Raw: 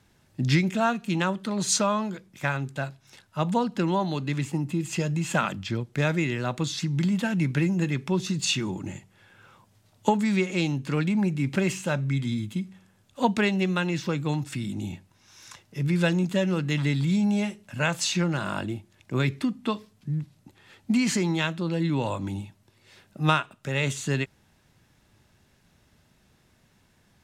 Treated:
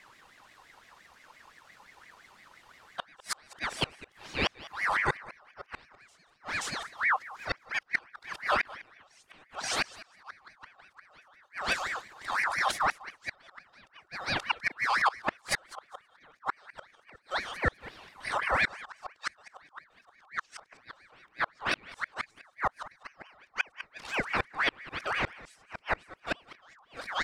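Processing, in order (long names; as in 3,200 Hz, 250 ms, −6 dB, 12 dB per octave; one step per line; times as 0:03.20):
played backwards from end to start
harmonic and percussive parts rebalanced percussive +4 dB
single-tap delay 529 ms −12 dB
dynamic equaliser 2,600 Hz, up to −4 dB, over −33 dBFS, Q 1.6
in parallel at −2.5 dB: compressor whose output falls as the input rises −22 dBFS, ratio −1
on the sum: gate with flip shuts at −13 dBFS, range −37 dB
high-shelf EQ 6,300 Hz −7.5 dB
comb filter 2.2 ms, depth 80%
on a send: repeating echo 202 ms, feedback 16%, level −18.5 dB
on the sum: ring modulator whose carrier an LFO sweeps 1,500 Hz, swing 40%, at 5.8 Hz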